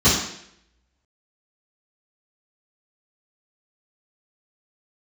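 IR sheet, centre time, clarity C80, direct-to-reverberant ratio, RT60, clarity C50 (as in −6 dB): 49 ms, 6.5 dB, −13.0 dB, 0.70 s, 2.5 dB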